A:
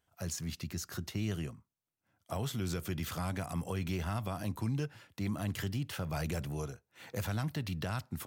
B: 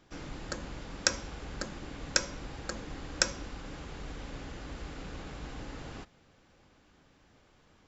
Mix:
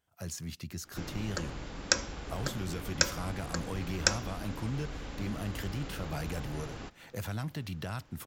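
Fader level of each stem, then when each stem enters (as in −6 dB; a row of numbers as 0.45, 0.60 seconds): −1.5, +1.0 decibels; 0.00, 0.85 seconds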